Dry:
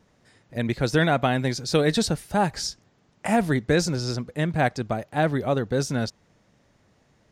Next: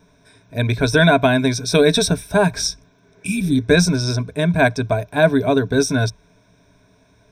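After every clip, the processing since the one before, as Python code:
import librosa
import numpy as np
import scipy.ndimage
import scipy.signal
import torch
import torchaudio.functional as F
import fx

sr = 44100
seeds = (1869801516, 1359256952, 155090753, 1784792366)

y = fx.spec_repair(x, sr, seeds[0], start_s=3.02, length_s=0.54, low_hz=360.0, high_hz=2300.0, source='both')
y = fx.ripple_eq(y, sr, per_octave=1.6, db=15)
y = F.gain(torch.from_numpy(y), 4.5).numpy()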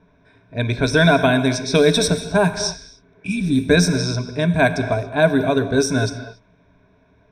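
y = fx.rev_gated(x, sr, seeds[1], gate_ms=310, shape='flat', drr_db=9.5)
y = fx.env_lowpass(y, sr, base_hz=2400.0, full_db=-11.5)
y = F.gain(torch.from_numpy(y), -1.0).numpy()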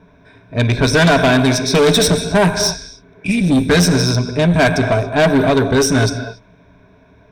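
y = fx.tube_stage(x, sr, drive_db=17.0, bias=0.35)
y = F.gain(torch.from_numpy(y), 9.0).numpy()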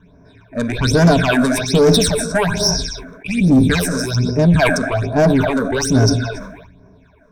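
y = fx.phaser_stages(x, sr, stages=8, low_hz=100.0, high_hz=3300.0, hz=1.2, feedback_pct=50)
y = fx.sustainer(y, sr, db_per_s=52.0)
y = F.gain(torch.from_numpy(y), -1.0).numpy()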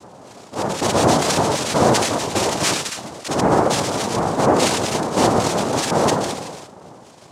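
y = fx.power_curve(x, sr, exponent=0.7)
y = fx.noise_vocoder(y, sr, seeds[2], bands=2)
y = F.gain(torch.from_numpy(y), -6.5).numpy()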